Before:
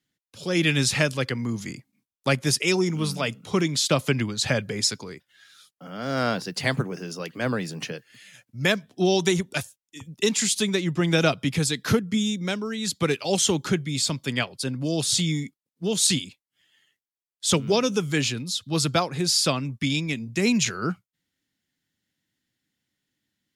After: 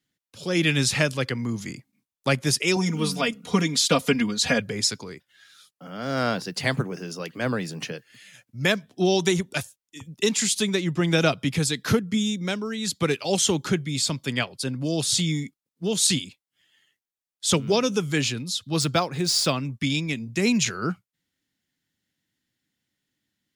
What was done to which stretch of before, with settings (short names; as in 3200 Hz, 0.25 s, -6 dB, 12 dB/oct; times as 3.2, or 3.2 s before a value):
2.76–4.6 comb 4.2 ms, depth 89%
18.81–19.65 median filter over 3 samples